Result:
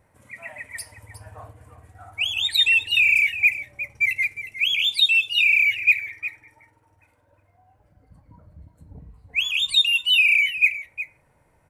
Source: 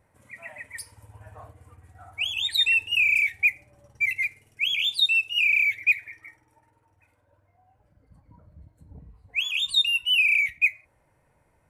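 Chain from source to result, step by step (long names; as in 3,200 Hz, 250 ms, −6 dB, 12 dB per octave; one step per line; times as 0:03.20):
0:09.76–0:10.54: high-pass filter 120 Hz → 270 Hz 12 dB per octave
single-tap delay 360 ms −13 dB
level +3.5 dB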